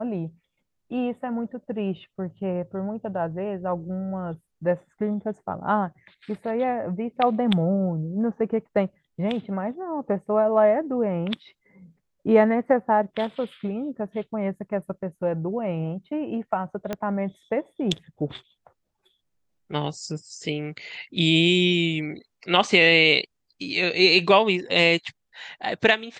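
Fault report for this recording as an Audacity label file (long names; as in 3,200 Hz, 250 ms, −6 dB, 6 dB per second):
16.930000	16.930000	click −14 dBFS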